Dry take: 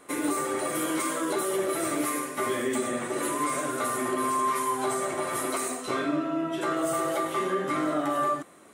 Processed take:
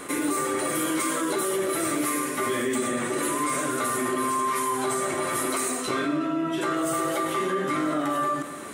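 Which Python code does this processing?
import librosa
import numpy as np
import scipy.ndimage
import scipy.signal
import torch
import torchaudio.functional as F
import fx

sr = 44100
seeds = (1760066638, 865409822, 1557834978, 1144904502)

y = fx.peak_eq(x, sr, hz=700.0, db=-5.0, octaves=1.0)
y = fx.echo_feedback(y, sr, ms=122, feedback_pct=59, wet_db=-22)
y = fx.env_flatten(y, sr, amount_pct=50)
y = F.gain(torch.from_numpy(y), 1.5).numpy()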